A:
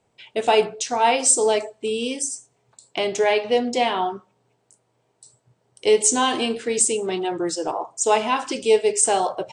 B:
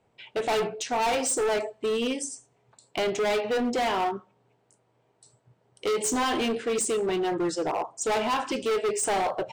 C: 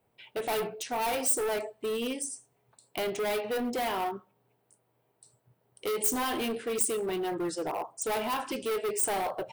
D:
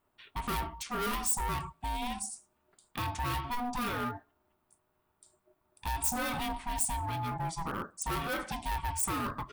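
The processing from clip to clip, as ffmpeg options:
ffmpeg -i in.wav -af "bass=frequency=250:gain=0,treble=frequency=4000:gain=-9,volume=23dB,asoftclip=hard,volume=-23dB" out.wav
ffmpeg -i in.wav -af "aexciter=amount=3.5:drive=9.4:freq=9700,volume=-5dB" out.wav
ffmpeg -i in.wav -af "aeval=exprs='val(0)*sin(2*PI*490*n/s)':channel_layout=same" out.wav

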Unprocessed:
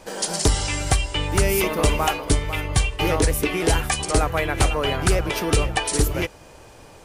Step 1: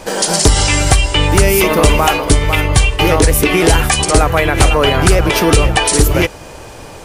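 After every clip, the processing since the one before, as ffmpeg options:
ffmpeg -i in.wav -af "alimiter=level_in=14dB:limit=-1dB:release=50:level=0:latency=1,volume=-1dB" out.wav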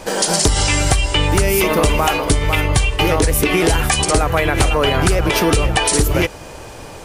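ffmpeg -i in.wav -af "acompressor=threshold=-9dB:ratio=6,volume=-1.5dB" out.wav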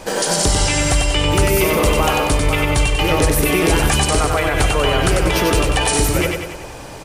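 ffmpeg -i in.wav -filter_complex "[0:a]alimiter=limit=-7.5dB:level=0:latency=1,asplit=2[link_01][link_02];[link_02]aecho=0:1:95|190|285|380|475|570|665:0.631|0.328|0.171|0.0887|0.0461|0.024|0.0125[link_03];[link_01][link_03]amix=inputs=2:normalize=0,volume=-1dB" out.wav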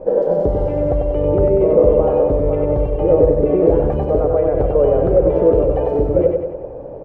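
ffmpeg -i in.wav -af "lowpass=frequency=530:width_type=q:width=4.9,volume=-3dB" out.wav

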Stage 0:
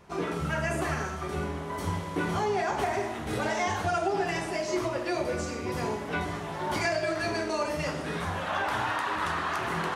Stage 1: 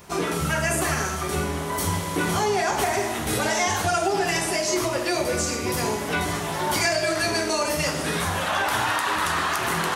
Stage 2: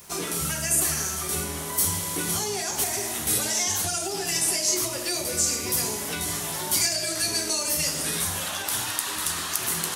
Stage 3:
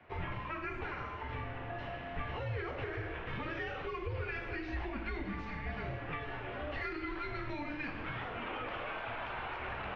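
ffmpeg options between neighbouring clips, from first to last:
ffmpeg -i in.wav -filter_complex "[0:a]aemphasis=mode=production:type=75kf,asplit=2[link_01][link_02];[link_02]alimiter=limit=-23dB:level=0:latency=1:release=166,volume=1dB[link_03];[link_01][link_03]amix=inputs=2:normalize=0" out.wav
ffmpeg -i in.wav -filter_complex "[0:a]crystalizer=i=3.5:c=0,acrossover=split=430|3000[link_01][link_02][link_03];[link_02]acompressor=threshold=-28dB:ratio=6[link_04];[link_01][link_04][link_03]amix=inputs=3:normalize=0,volume=-6.5dB" out.wav
ffmpeg -i in.wav -af "highpass=frequency=230:width_type=q:width=0.5412,highpass=frequency=230:width_type=q:width=1.307,lowpass=frequency=2800:width_type=q:width=0.5176,lowpass=frequency=2800:width_type=q:width=0.7071,lowpass=frequency=2800:width_type=q:width=1.932,afreqshift=-300,volume=-5dB" out.wav

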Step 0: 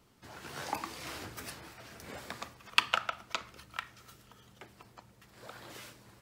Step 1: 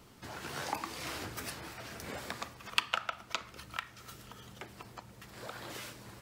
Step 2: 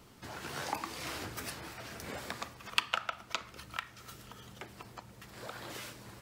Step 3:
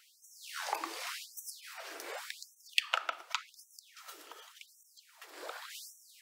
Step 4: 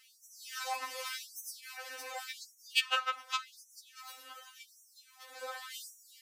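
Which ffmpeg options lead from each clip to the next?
ffmpeg -i in.wav -af "acompressor=threshold=-55dB:ratio=1.5,volume=8dB" out.wav
ffmpeg -i in.wav -af anull out.wav
ffmpeg -i in.wav -af "afftfilt=real='re*gte(b*sr/1024,260*pow(5600/260,0.5+0.5*sin(2*PI*0.88*pts/sr)))':imag='im*gte(b*sr/1024,260*pow(5600/260,0.5+0.5*sin(2*PI*0.88*pts/sr)))':win_size=1024:overlap=0.75,volume=1dB" out.wav
ffmpeg -i in.wav -af "afftfilt=real='re*3.46*eq(mod(b,12),0)':imag='im*3.46*eq(mod(b,12),0)':win_size=2048:overlap=0.75,volume=3.5dB" out.wav

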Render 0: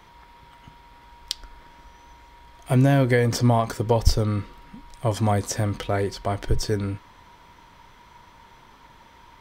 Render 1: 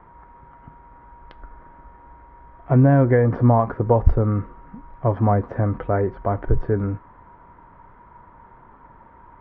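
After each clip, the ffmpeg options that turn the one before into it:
ffmpeg -i in.wav -af "lowpass=frequency=1500:width=0.5412,lowpass=frequency=1500:width=1.3066,volume=3.5dB" out.wav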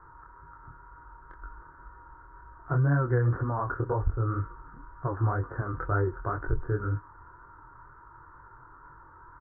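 ffmpeg -i in.wav -af "firequalizer=gain_entry='entry(130,0);entry(210,-19);entry(320,0);entry(620,-12);entry(1400,10);entry(2400,-25)':delay=0.05:min_phase=1,acompressor=threshold=-21dB:ratio=2.5,flanger=delay=20:depth=6:speed=2" out.wav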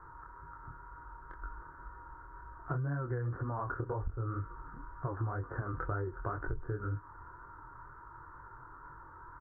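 ffmpeg -i in.wav -af "acompressor=threshold=-33dB:ratio=6" out.wav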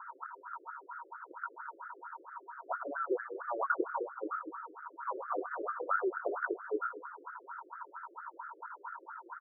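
ffmpeg -i in.wav -filter_complex "[0:a]asplit=2[link_01][link_02];[link_02]aecho=0:1:108|216|324|432|540|648|756:0.299|0.173|0.1|0.0582|0.0338|0.0196|0.0114[link_03];[link_01][link_03]amix=inputs=2:normalize=0,afftfilt=real='re*between(b*sr/1024,410*pow(1800/410,0.5+0.5*sin(2*PI*4.4*pts/sr))/1.41,410*pow(1800/410,0.5+0.5*sin(2*PI*4.4*pts/sr))*1.41)':imag='im*between(b*sr/1024,410*pow(1800/410,0.5+0.5*sin(2*PI*4.4*pts/sr))/1.41,410*pow(1800/410,0.5+0.5*sin(2*PI*4.4*pts/sr))*1.41)':win_size=1024:overlap=0.75,volume=9.5dB" out.wav

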